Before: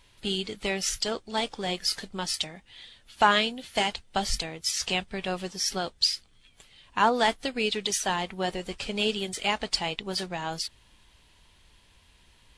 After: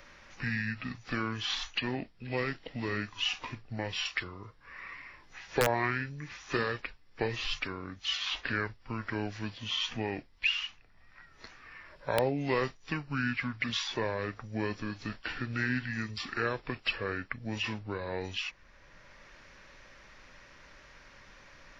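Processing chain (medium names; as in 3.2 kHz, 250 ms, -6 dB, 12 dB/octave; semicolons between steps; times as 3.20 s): speed mistake 78 rpm record played at 45 rpm; integer overflow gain 9.5 dB; three bands compressed up and down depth 40%; trim -4.5 dB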